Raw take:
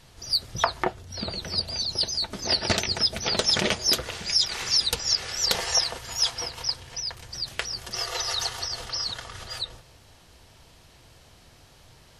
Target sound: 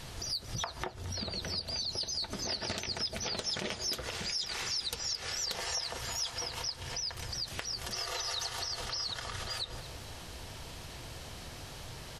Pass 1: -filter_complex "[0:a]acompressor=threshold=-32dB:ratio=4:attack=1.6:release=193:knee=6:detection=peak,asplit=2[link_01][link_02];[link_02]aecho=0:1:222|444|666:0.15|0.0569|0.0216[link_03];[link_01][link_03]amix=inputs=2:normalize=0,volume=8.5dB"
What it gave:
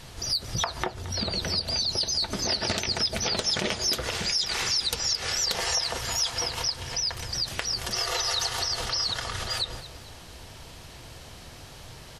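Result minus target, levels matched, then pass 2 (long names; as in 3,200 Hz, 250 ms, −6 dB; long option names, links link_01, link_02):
downward compressor: peak gain reduction −8.5 dB
-filter_complex "[0:a]acompressor=threshold=-43.5dB:ratio=4:attack=1.6:release=193:knee=6:detection=peak,asplit=2[link_01][link_02];[link_02]aecho=0:1:222|444|666:0.15|0.0569|0.0216[link_03];[link_01][link_03]amix=inputs=2:normalize=0,volume=8.5dB"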